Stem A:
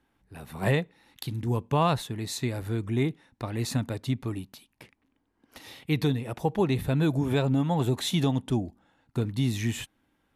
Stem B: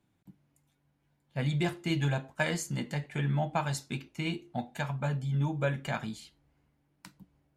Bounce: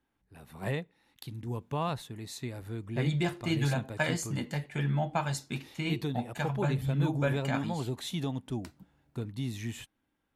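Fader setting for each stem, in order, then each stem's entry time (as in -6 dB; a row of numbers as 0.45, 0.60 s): -8.5, 0.0 dB; 0.00, 1.60 s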